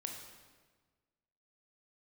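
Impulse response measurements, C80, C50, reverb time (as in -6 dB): 6.0 dB, 4.0 dB, 1.4 s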